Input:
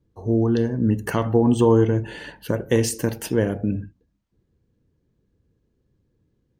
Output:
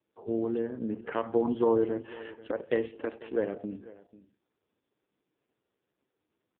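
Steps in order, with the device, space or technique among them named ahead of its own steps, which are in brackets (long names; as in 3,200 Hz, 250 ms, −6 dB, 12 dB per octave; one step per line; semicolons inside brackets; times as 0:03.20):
0:02.95–0:03.36: high-pass filter 220 Hz 24 dB per octave
satellite phone (band-pass filter 340–3,200 Hz; single-tap delay 492 ms −19 dB; level −5 dB; AMR narrowband 4.75 kbit/s 8,000 Hz)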